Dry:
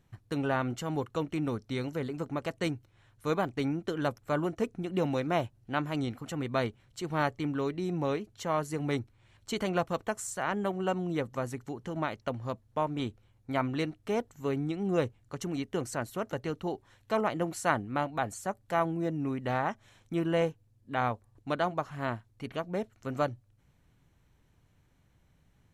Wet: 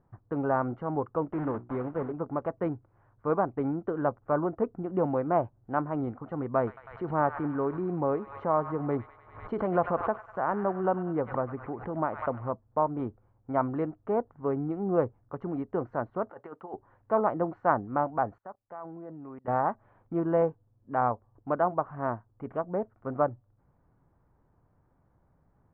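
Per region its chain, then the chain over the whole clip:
0:01.33–0:02.14: one scale factor per block 3 bits + low-pass filter 4,000 Hz 24 dB per octave + mains-hum notches 60/120/180/240/300/360 Hz
0:06.57–0:12.52: delay with a high-pass on its return 99 ms, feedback 68%, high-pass 1,800 Hz, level −6 dB + background raised ahead of every attack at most 85 dB per second
0:16.31–0:16.74: high-pass filter 1,100 Hz 6 dB per octave + compressor whose output falls as the input rises −43 dBFS, ratio −0.5
0:18.38–0:19.48: low-shelf EQ 490 Hz −8.5 dB + output level in coarse steps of 22 dB
whole clip: low-pass filter 1,200 Hz 24 dB per octave; low-shelf EQ 370 Hz −8.5 dB; level +6.5 dB

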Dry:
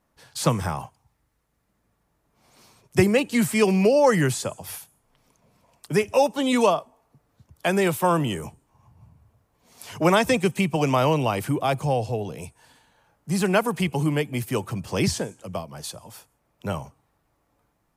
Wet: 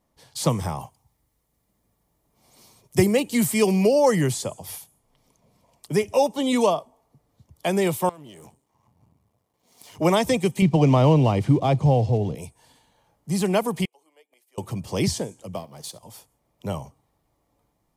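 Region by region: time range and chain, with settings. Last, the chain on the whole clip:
0:00.81–0:04.12: high-shelf EQ 9,400 Hz +8.5 dB + floating-point word with a short mantissa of 8 bits
0:08.09–0:09.99: gain on one half-wave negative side −12 dB + high-pass filter 190 Hz 6 dB per octave + downward compressor 5 to 1, threshold −41 dBFS
0:10.62–0:12.35: one scale factor per block 5 bits + Bessel low-pass filter 4,400 Hz + low-shelf EQ 300 Hz +10 dB
0:13.85–0:14.58: high-pass filter 470 Hz 24 dB per octave + gate with flip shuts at −32 dBFS, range −27 dB
0:15.55–0:16.03: mu-law and A-law mismatch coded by A + high-pass filter 110 Hz + flutter between parallel walls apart 11.8 metres, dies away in 0.2 s
whole clip: parametric band 1,500 Hz −10 dB 0.56 octaves; notch filter 2,600 Hz, Q 13

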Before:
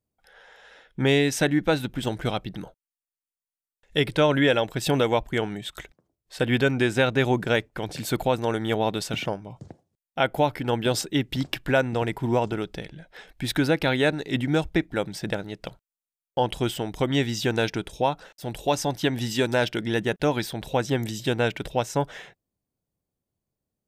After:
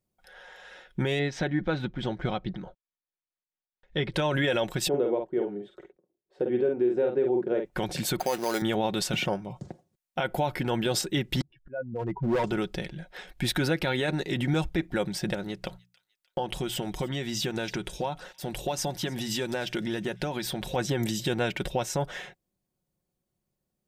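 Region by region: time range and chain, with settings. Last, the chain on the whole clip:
0:01.19–0:04.14: high-frequency loss of the air 190 metres + notch filter 2,700 Hz + amplitude tremolo 4.6 Hz, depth 53%
0:04.88–0:07.65: resonant band-pass 400 Hz, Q 3 + double-tracking delay 49 ms −5 dB
0:08.20–0:08.62: high-pass filter 300 Hz + bad sample-rate conversion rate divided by 8×, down none, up hold
0:11.41–0:12.44: expanding power law on the bin magnitudes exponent 2.4 + volume swells 634 ms + gain into a clipping stage and back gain 25.5 dB
0:15.34–0:20.76: downward compressor, threshold −28 dBFS + mains-hum notches 60/120/180 Hz + delay with a high-pass on its return 303 ms, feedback 45%, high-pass 2,200 Hz, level −21.5 dB
whole clip: comb filter 5.5 ms, depth 45%; brickwall limiter −18.5 dBFS; level +1.5 dB

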